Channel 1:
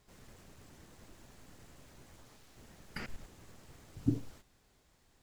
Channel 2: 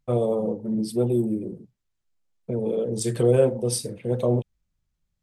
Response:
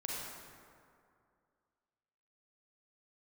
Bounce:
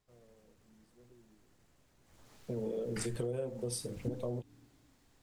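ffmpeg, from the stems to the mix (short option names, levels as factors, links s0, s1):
-filter_complex "[0:a]volume=0.944,afade=t=in:st=2.02:d=0.38:silence=0.251189,asplit=3[s0][s1][s2];[s1]volume=0.0891[s3];[1:a]volume=0.422[s4];[s2]apad=whole_len=230240[s5];[s4][s5]sidechaingate=range=0.0224:threshold=0.001:ratio=16:detection=peak[s6];[2:a]atrim=start_sample=2205[s7];[s3][s7]afir=irnorm=-1:irlink=0[s8];[s0][s6][s8]amix=inputs=3:normalize=0,acompressor=threshold=0.0224:ratio=10"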